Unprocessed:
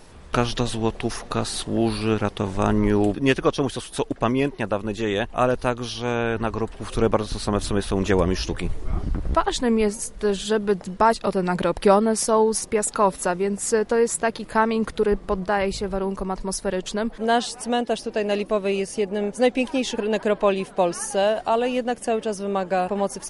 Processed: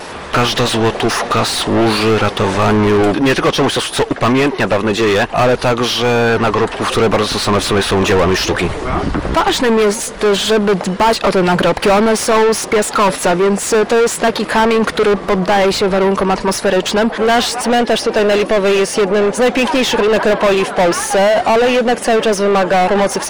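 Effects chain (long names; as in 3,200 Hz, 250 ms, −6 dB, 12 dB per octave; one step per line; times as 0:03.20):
pitch vibrato 0.5 Hz 11 cents
mid-hump overdrive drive 33 dB, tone 2,600 Hz, clips at −4 dBFS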